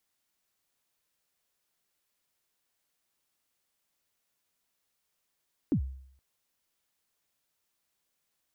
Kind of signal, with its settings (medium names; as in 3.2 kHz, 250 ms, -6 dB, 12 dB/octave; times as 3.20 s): kick drum length 0.47 s, from 340 Hz, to 66 Hz, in 87 ms, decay 0.65 s, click off, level -20.5 dB